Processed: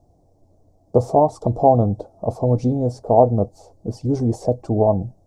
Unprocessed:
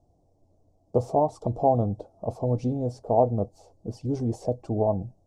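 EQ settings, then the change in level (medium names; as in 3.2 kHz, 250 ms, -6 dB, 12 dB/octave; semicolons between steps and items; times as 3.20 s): peaking EQ 2.8 kHz -6.5 dB 0.59 oct; +7.5 dB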